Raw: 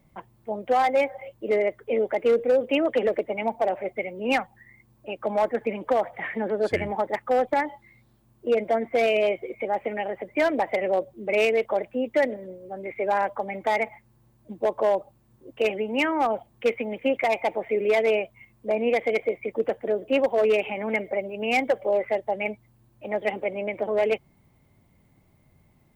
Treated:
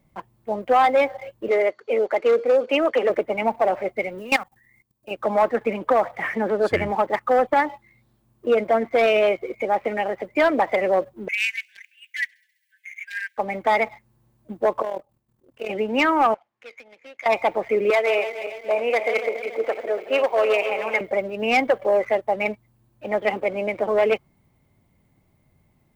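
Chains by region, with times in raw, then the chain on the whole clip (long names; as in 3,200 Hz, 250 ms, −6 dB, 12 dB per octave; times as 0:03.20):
0:01.48–0:03.10: high-pass filter 330 Hz + bad sample-rate conversion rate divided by 3×, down none, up filtered
0:04.18–0:05.11: one scale factor per block 7 bits + high-shelf EQ 3,000 Hz +10 dB + output level in coarse steps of 19 dB
0:11.28–0:13.38: linear-phase brick-wall high-pass 1,500 Hz + delay with a high-pass on its return 67 ms, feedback 73%, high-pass 3,500 Hz, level −22 dB
0:14.82–0:15.70: one scale factor per block 7 bits + amplitude modulation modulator 40 Hz, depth 55% + output level in coarse steps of 11 dB
0:16.34–0:17.26: running median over 15 samples + downward compressor 2 to 1, threshold −36 dBFS + resonant band-pass 2,100 Hz, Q 1.2
0:17.90–0:21.01: feedback delay that plays each chunk backwards 142 ms, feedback 70%, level −10 dB + high-pass filter 520 Hz
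whole clip: dynamic equaliser 1,200 Hz, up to +8 dB, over −44 dBFS, Q 2.3; leveller curve on the samples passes 1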